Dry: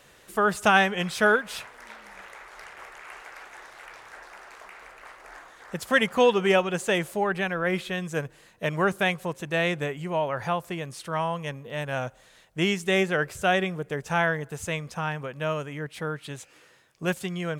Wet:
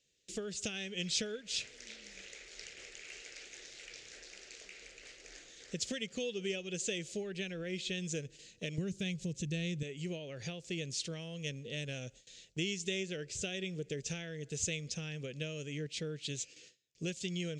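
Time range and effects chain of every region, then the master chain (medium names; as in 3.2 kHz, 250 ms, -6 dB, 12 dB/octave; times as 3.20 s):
8.78–9.83 s: tone controls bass +15 dB, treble +4 dB + upward compressor, threshold -29 dBFS
whole clip: compression 6:1, threshold -31 dBFS; FFT filter 470 Hz 0 dB, 990 Hz -27 dB, 2.5 kHz +3 dB, 4.5 kHz +9 dB, 7.1 kHz +11 dB, 13 kHz -28 dB; gate with hold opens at -41 dBFS; trim -3.5 dB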